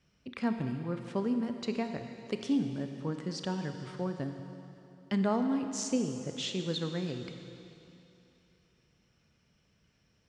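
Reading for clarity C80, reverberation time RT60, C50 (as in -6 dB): 7.5 dB, 2.9 s, 6.5 dB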